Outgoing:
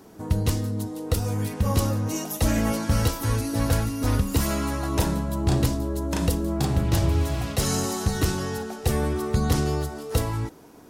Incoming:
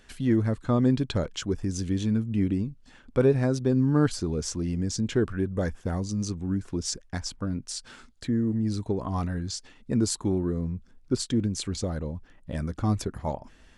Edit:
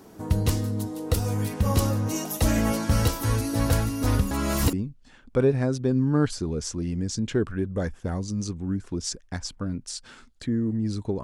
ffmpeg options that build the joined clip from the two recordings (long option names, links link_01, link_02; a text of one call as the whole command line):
ffmpeg -i cue0.wav -i cue1.wav -filter_complex "[0:a]apad=whole_dur=11.23,atrim=end=11.23,asplit=2[link_01][link_02];[link_01]atrim=end=4.312[link_03];[link_02]atrim=start=4.308:end=4.732,asetpts=PTS-STARTPTS,areverse[link_04];[1:a]atrim=start=2.538:end=9.04[link_05];[link_03][link_04]acrossfade=duration=0.004:curve1=hsin:curve2=hsin[link_06];[link_06][link_05]acrossfade=duration=0.004:curve1=hsin:curve2=hsin" out.wav